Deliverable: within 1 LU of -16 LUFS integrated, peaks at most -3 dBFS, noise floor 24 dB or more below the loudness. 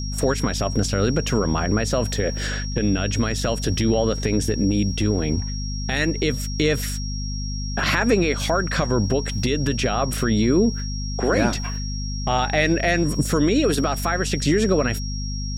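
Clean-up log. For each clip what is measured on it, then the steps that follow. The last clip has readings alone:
hum 50 Hz; harmonics up to 250 Hz; hum level -25 dBFS; steady tone 5600 Hz; tone level -33 dBFS; loudness -22.0 LUFS; peak -6.0 dBFS; loudness target -16.0 LUFS
-> de-hum 50 Hz, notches 5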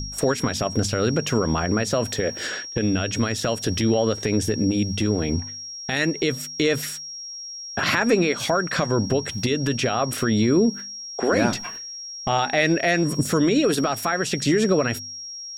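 hum none; steady tone 5600 Hz; tone level -33 dBFS
-> notch 5600 Hz, Q 30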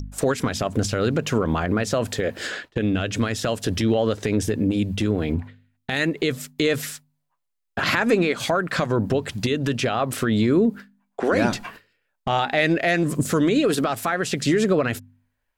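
steady tone none; loudness -23.0 LUFS; peak -7.0 dBFS; loudness target -16.0 LUFS
-> gain +7 dB; limiter -3 dBFS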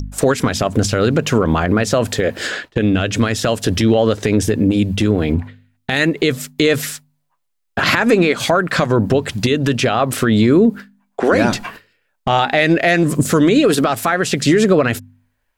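loudness -16.0 LUFS; peak -3.0 dBFS; noise floor -69 dBFS

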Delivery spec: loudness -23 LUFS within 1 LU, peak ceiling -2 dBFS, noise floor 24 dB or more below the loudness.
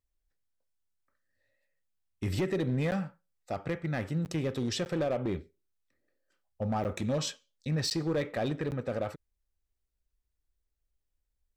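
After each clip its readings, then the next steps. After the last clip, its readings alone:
clipped 1.2%; flat tops at -24.5 dBFS; dropouts 6; longest dropout 9.4 ms; loudness -33.0 LUFS; peak -24.5 dBFS; loudness target -23.0 LUFS
-> clip repair -24.5 dBFS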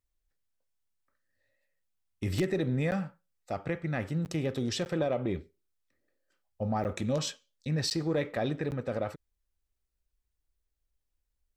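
clipped 0.0%; dropouts 6; longest dropout 9.4 ms
-> interpolate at 2.91/4.25/4.85/6.84/7.9/8.71, 9.4 ms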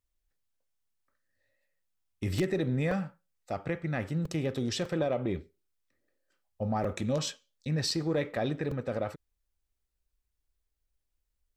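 dropouts 0; loudness -32.5 LUFS; peak -15.5 dBFS; loudness target -23.0 LUFS
-> gain +9.5 dB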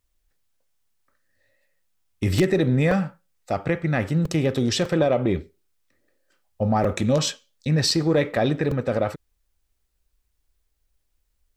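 loudness -23.0 LUFS; peak -6.0 dBFS; noise floor -73 dBFS

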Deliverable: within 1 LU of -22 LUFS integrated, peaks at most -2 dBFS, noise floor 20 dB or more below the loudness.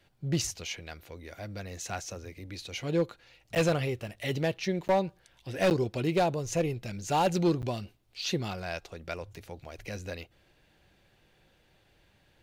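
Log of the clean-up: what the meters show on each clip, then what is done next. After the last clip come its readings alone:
clipped 0.7%; flat tops at -19.5 dBFS; dropouts 4; longest dropout 9.1 ms; loudness -31.5 LUFS; peak -19.5 dBFS; loudness target -22.0 LUFS
-> clip repair -19.5 dBFS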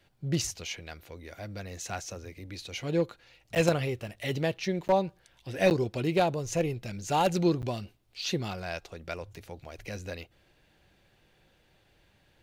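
clipped 0.0%; dropouts 4; longest dropout 9.1 ms
-> interpolate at 3.55/4.88/5.7/7.62, 9.1 ms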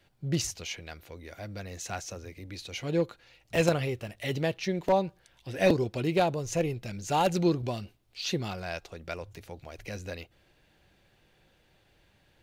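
dropouts 0; loudness -31.0 LUFS; peak -8.5 dBFS; loudness target -22.0 LUFS
-> gain +9 dB; limiter -2 dBFS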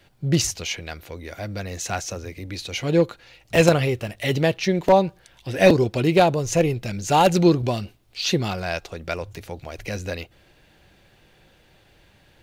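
loudness -22.0 LUFS; peak -2.0 dBFS; noise floor -57 dBFS

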